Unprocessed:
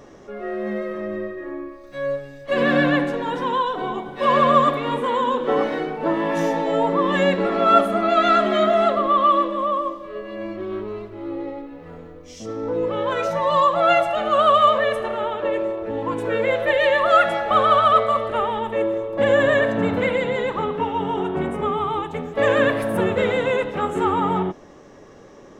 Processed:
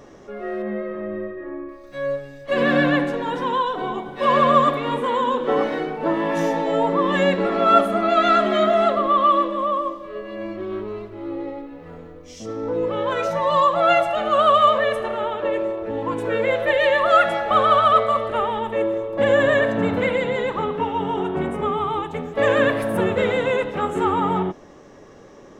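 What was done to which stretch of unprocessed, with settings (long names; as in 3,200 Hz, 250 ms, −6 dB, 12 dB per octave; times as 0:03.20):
0:00.62–0:01.69: high-frequency loss of the air 320 metres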